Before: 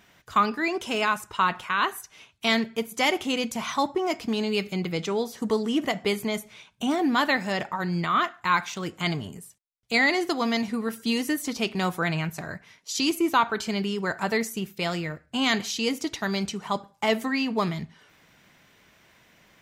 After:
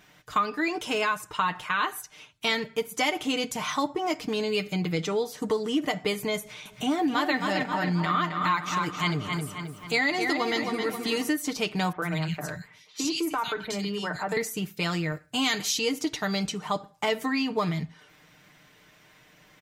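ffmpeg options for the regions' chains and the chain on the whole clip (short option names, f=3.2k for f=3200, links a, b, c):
-filter_complex "[0:a]asettb=1/sr,asplit=3[a][b][c];[a]atrim=end=6.394[d];[b]atrim=start=6.39:end=11.29,asetpts=PTS-STARTPTS,afade=t=in:d=0.004:c=qsin,afade=t=out:st=4.896:d=0.004:c=qsin,acompressor=mode=upward:threshold=-36dB:ratio=2.5:attack=3.2:release=140:knee=2.83:detection=peak,asplit=2[e][f];[f]adelay=266,lowpass=f=5k:p=1,volume=-6.5dB,asplit=2[g][h];[h]adelay=266,lowpass=f=5k:p=1,volume=0.52,asplit=2[i][j];[j]adelay=266,lowpass=f=5k:p=1,volume=0.52,asplit=2[k][l];[l]adelay=266,lowpass=f=5k:p=1,volume=0.52,asplit=2[m][n];[n]adelay=266,lowpass=f=5k:p=1,volume=0.52,asplit=2[o][p];[p]adelay=266,lowpass=f=5k:p=1,volume=0.52[q];[e][g][i][k][m][o][q]amix=inputs=7:normalize=0,atrim=end_sample=216090[r];[c]atrim=start=11.286[s];[d][r]acrossfade=d=0.004:c1=hsin:c2=qsin[t];[t][s]acrossfade=d=0.004:c1=qsin:c2=hsin,asettb=1/sr,asplit=3[u][v][w];[u]atrim=end=11.924[x];[v]atrim=start=11.92:end=14.37,asetpts=PTS-STARTPTS,afade=t=in:d=0.004:c=qsin,afade=t=out:st=2.446:d=0.004:c=qsin,acrossover=split=220|2300[y][z][aa];[y]adelay=40[ab];[aa]adelay=100[ac];[ab][z][ac]amix=inputs=3:normalize=0,atrim=end_sample=108045,acompressor=threshold=-26dB:ratio=3:attack=3.2:release=140:knee=1:detection=peak[ad];[w]atrim=start=14.366[ae];[x][ad]acrossfade=d=0.004:c1=hsin:c2=qsin[af];[af][ae]acrossfade=d=0.004:c1=qsin:c2=hsin,asettb=1/sr,asplit=3[ag][ah][ai];[ag]atrim=end=15.124[aj];[ah]atrim=start=15.12:end=15.79,asetpts=PTS-STARTPTS,afade=t=in:d=0.004:c=qsin,afade=t=out:st=0.666:d=0.004:c=qsin,highpass=47,aemphasis=mode=production:type=cd[ak];[ai]atrim=start=15.786[al];[aj][ak]acrossfade=d=0.004:c1=hsin:c2=qsin[am];[am][al]acrossfade=d=0.004:c1=qsin:c2=hsin,aecho=1:1:6.6:0.57,acompressor=threshold=-23dB:ratio=3"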